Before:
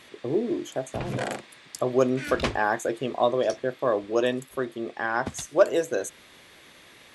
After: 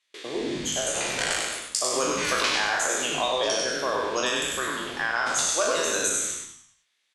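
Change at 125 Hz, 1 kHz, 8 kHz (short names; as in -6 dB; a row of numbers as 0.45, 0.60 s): -7.5, +1.5, +15.5 dB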